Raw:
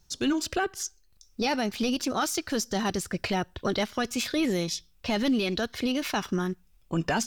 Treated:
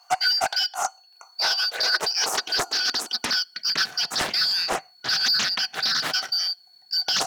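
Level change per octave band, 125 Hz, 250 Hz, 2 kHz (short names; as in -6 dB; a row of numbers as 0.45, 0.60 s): -13.0, -17.0, +7.5 dB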